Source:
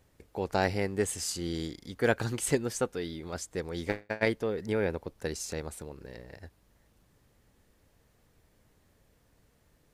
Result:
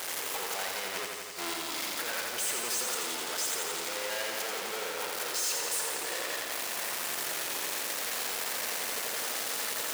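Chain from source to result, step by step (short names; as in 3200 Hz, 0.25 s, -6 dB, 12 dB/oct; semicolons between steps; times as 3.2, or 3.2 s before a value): infinite clipping; HPF 500 Hz 12 dB/oct; tilt shelf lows -3 dB; 0.94–1.54 negative-ratio compressor -40 dBFS, ratio -0.5; lo-fi delay 85 ms, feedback 80%, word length 10-bit, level -4 dB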